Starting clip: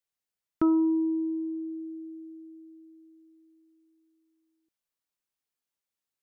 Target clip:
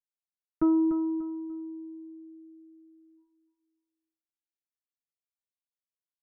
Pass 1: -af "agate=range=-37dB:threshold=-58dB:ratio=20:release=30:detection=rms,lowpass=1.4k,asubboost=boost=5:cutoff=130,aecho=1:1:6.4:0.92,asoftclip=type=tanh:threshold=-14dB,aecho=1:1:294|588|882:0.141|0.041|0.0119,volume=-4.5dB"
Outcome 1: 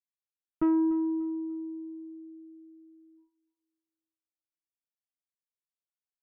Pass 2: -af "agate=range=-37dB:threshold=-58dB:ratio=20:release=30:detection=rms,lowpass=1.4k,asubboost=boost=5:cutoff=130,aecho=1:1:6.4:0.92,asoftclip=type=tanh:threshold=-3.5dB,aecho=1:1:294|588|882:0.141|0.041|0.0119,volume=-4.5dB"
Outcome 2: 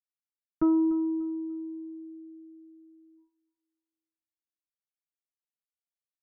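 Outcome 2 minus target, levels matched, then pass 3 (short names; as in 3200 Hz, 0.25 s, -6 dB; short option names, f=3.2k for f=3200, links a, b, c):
echo-to-direct -7.5 dB
-af "agate=range=-37dB:threshold=-58dB:ratio=20:release=30:detection=rms,lowpass=1.4k,asubboost=boost=5:cutoff=130,aecho=1:1:6.4:0.92,asoftclip=type=tanh:threshold=-3.5dB,aecho=1:1:294|588|882:0.335|0.0971|0.0282,volume=-4.5dB"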